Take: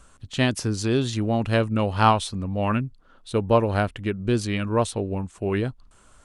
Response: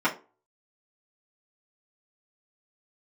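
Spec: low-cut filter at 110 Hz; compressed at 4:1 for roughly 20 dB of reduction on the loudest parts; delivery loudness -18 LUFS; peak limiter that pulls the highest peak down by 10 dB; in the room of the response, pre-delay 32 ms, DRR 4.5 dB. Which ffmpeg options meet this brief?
-filter_complex "[0:a]highpass=110,acompressor=threshold=0.0141:ratio=4,alimiter=level_in=2:limit=0.0631:level=0:latency=1,volume=0.501,asplit=2[s0][s1];[1:a]atrim=start_sample=2205,adelay=32[s2];[s1][s2]afir=irnorm=-1:irlink=0,volume=0.119[s3];[s0][s3]amix=inputs=2:normalize=0,volume=14.1"

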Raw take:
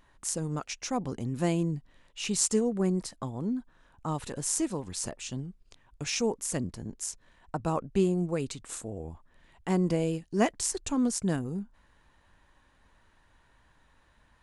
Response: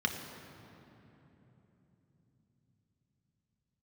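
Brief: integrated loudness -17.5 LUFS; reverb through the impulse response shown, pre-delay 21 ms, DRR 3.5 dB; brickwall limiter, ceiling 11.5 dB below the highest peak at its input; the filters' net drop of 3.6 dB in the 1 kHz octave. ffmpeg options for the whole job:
-filter_complex "[0:a]equalizer=f=1000:t=o:g=-5,alimiter=limit=0.0891:level=0:latency=1,asplit=2[s0][s1];[1:a]atrim=start_sample=2205,adelay=21[s2];[s1][s2]afir=irnorm=-1:irlink=0,volume=0.299[s3];[s0][s3]amix=inputs=2:normalize=0,volume=5.01"

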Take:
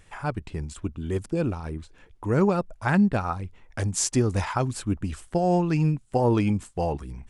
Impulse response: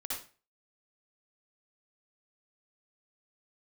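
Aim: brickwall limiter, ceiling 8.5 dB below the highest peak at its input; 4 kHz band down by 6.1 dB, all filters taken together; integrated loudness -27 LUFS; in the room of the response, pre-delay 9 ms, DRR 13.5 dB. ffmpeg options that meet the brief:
-filter_complex "[0:a]equalizer=f=4000:t=o:g=-9,alimiter=limit=0.112:level=0:latency=1,asplit=2[s0][s1];[1:a]atrim=start_sample=2205,adelay=9[s2];[s1][s2]afir=irnorm=-1:irlink=0,volume=0.178[s3];[s0][s3]amix=inputs=2:normalize=0,volume=1.33"

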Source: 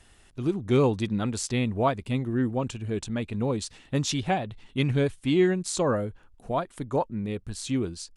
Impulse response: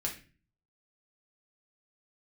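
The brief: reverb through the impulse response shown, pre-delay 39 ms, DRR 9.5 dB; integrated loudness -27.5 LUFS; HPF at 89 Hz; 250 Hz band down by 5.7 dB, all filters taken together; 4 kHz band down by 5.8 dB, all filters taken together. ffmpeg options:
-filter_complex "[0:a]highpass=89,equalizer=f=250:t=o:g=-7.5,equalizer=f=4000:t=o:g=-7.5,asplit=2[s0][s1];[1:a]atrim=start_sample=2205,adelay=39[s2];[s1][s2]afir=irnorm=-1:irlink=0,volume=0.251[s3];[s0][s3]amix=inputs=2:normalize=0,volume=1.41"

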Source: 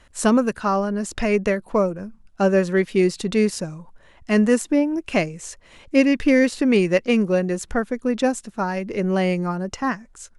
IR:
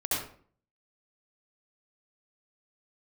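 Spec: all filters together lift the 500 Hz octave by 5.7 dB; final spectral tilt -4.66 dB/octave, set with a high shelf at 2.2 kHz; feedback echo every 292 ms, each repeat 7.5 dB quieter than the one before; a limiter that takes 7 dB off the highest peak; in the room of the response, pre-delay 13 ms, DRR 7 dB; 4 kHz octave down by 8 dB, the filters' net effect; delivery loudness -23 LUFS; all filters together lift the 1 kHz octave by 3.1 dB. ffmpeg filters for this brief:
-filter_complex "[0:a]equalizer=f=500:t=o:g=6.5,equalizer=f=1000:t=o:g=3.5,highshelf=f=2200:g=-7.5,equalizer=f=4000:t=o:g=-4.5,alimiter=limit=0.355:level=0:latency=1,aecho=1:1:292|584|876|1168|1460:0.422|0.177|0.0744|0.0312|0.0131,asplit=2[s0][s1];[1:a]atrim=start_sample=2205,adelay=13[s2];[s1][s2]afir=irnorm=-1:irlink=0,volume=0.178[s3];[s0][s3]amix=inputs=2:normalize=0,volume=0.596"

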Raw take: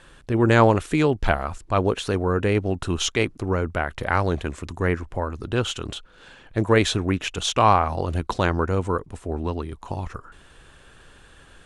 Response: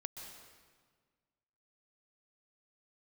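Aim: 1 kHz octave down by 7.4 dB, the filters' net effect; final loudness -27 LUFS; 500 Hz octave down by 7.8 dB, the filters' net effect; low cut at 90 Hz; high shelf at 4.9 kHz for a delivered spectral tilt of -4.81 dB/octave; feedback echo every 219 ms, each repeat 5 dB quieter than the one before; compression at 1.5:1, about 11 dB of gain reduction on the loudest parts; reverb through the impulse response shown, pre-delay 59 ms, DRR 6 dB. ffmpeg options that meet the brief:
-filter_complex "[0:a]highpass=90,equalizer=f=500:t=o:g=-8.5,equalizer=f=1000:t=o:g=-6.5,highshelf=f=4900:g=-6,acompressor=threshold=0.00398:ratio=1.5,aecho=1:1:219|438|657|876|1095|1314|1533:0.562|0.315|0.176|0.0988|0.0553|0.031|0.0173,asplit=2[s0][s1];[1:a]atrim=start_sample=2205,adelay=59[s2];[s1][s2]afir=irnorm=-1:irlink=0,volume=0.668[s3];[s0][s3]amix=inputs=2:normalize=0,volume=2.37"

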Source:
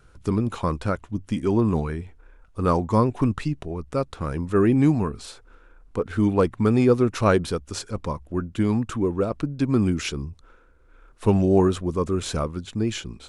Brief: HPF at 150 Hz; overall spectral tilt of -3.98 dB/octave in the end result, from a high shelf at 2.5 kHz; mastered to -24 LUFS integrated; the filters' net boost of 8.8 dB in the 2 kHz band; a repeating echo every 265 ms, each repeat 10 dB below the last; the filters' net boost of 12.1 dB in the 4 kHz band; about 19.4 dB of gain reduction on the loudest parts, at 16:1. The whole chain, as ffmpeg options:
-af "highpass=150,equalizer=f=2000:t=o:g=6,highshelf=f=2500:g=9,equalizer=f=4000:t=o:g=5.5,acompressor=threshold=0.0251:ratio=16,aecho=1:1:265|530|795|1060:0.316|0.101|0.0324|0.0104,volume=4.47"

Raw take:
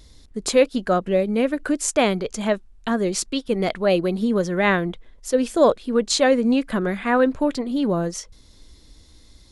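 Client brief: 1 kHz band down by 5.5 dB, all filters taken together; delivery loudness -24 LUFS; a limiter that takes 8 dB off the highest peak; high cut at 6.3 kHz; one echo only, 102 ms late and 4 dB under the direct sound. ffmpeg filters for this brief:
-af "lowpass=6300,equalizer=f=1000:t=o:g=-8,alimiter=limit=0.178:level=0:latency=1,aecho=1:1:102:0.631,volume=0.944"

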